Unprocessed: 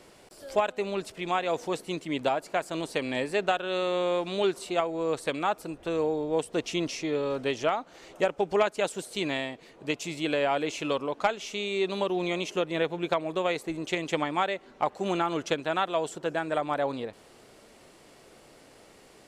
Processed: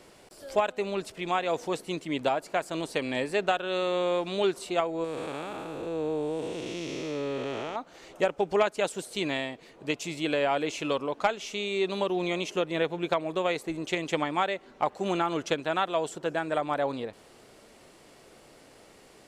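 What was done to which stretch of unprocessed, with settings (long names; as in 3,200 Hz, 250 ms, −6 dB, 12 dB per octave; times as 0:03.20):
0:05.04–0:07.76: spectrum smeared in time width 397 ms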